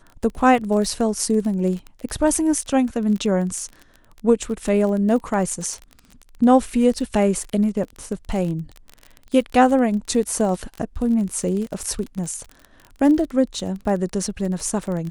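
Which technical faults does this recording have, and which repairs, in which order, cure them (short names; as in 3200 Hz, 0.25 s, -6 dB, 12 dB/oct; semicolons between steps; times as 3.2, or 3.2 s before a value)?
crackle 32/s -27 dBFS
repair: de-click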